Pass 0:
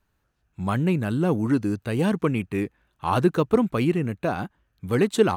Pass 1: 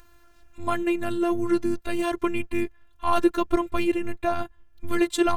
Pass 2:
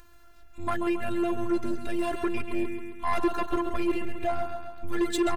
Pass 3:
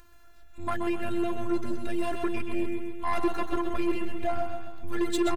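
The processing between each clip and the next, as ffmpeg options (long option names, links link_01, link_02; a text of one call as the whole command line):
ffmpeg -i in.wav -af "asubboost=boost=11:cutoff=88,afftfilt=real='hypot(re,im)*cos(PI*b)':imag='0':win_size=512:overlap=0.75,acompressor=mode=upward:threshold=-44dB:ratio=2.5,volume=5dB" out.wav
ffmpeg -i in.wav -af "aecho=1:1:135|270|405|540|675|810:0.316|0.168|0.0888|0.0471|0.025|0.0132,asoftclip=type=tanh:threshold=-19dB" out.wav
ffmpeg -i in.wav -af "aecho=1:1:126|252|378|504|630|756:0.316|0.174|0.0957|0.0526|0.0289|0.0159,volume=-1.5dB" out.wav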